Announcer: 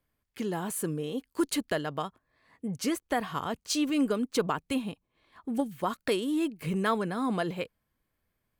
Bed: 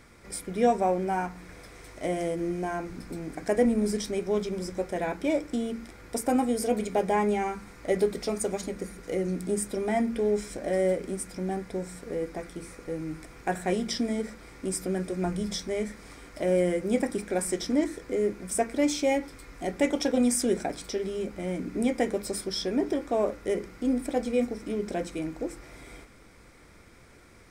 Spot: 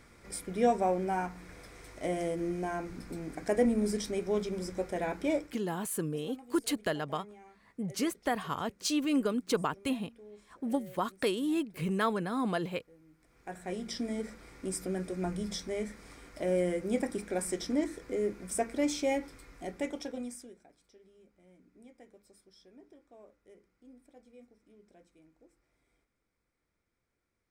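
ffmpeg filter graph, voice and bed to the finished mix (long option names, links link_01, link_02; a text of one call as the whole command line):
ffmpeg -i stem1.wav -i stem2.wav -filter_complex "[0:a]adelay=5150,volume=-2dB[link_01];[1:a]volume=17.5dB,afade=type=out:start_time=5.34:duration=0.25:silence=0.0749894,afade=type=in:start_time=13.18:duration=1.07:silence=0.0891251,afade=type=out:start_time=19.2:duration=1.34:silence=0.0595662[link_02];[link_01][link_02]amix=inputs=2:normalize=0" out.wav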